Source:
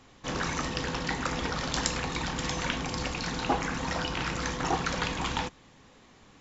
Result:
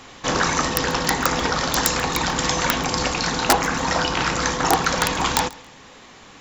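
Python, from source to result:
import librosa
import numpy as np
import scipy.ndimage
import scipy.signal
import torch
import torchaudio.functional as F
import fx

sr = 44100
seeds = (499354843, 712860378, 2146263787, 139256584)

p1 = fx.rider(x, sr, range_db=10, speed_s=0.5)
p2 = x + (p1 * 10.0 ** (3.0 / 20.0))
p3 = (np.mod(10.0 ** (9.0 / 20.0) * p2 + 1.0, 2.0) - 1.0) / 10.0 ** (9.0 / 20.0)
p4 = fx.low_shelf(p3, sr, hz=340.0, db=-9.0)
p5 = p4 + fx.echo_feedback(p4, sr, ms=138, feedback_pct=23, wet_db=-22.0, dry=0)
p6 = fx.dynamic_eq(p5, sr, hz=2600.0, q=1.0, threshold_db=-37.0, ratio=4.0, max_db=-5)
y = p6 * 10.0 ** (6.0 / 20.0)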